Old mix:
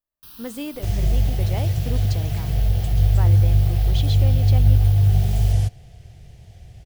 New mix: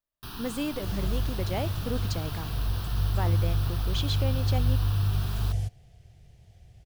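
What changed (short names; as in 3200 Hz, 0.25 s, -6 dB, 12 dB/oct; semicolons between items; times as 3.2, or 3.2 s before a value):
first sound: remove pre-emphasis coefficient 0.8; second sound -10.0 dB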